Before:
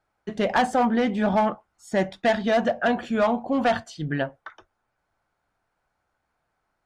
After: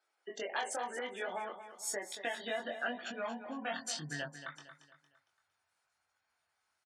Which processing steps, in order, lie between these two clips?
high-pass sweep 380 Hz -> 72 Hz, 2.02–5.98; spectral gate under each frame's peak -30 dB strong; compressor, threshold -25 dBFS, peak gain reduction 11 dB; chorus 0.99 Hz, delay 20 ms, depth 2.7 ms; pre-emphasis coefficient 0.97; feedback echo 0.229 s, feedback 40%, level -11 dB; gain +12 dB

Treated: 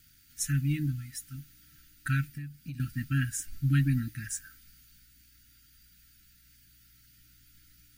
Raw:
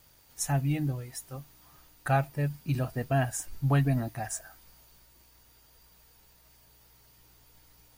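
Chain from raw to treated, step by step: brick-wall FIR band-stop 320–1300 Hz; 2.28–2.8 compressor 6:1, threshold -38 dBFS, peak gain reduction 13.5 dB

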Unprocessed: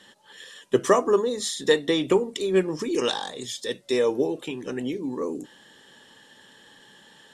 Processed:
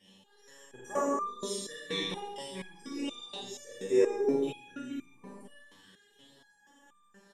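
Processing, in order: phaser stages 12, 0.33 Hz, lowest notch 380–4400 Hz; on a send: echo 0.157 s -12.5 dB; on the sum: Schroeder reverb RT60 0.89 s, combs from 32 ms, DRR -4.5 dB; stepped resonator 4.2 Hz 96–1200 Hz; gain +1.5 dB

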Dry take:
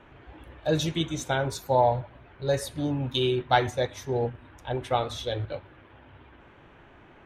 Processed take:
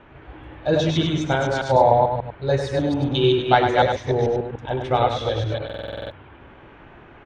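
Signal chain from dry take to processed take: reverse delay 0.147 s, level -2 dB; Gaussian blur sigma 1.6 samples; on a send: echo 0.1 s -6.5 dB; on the sum: stuck buffer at 5.65, samples 2048, times 9; gain +4.5 dB

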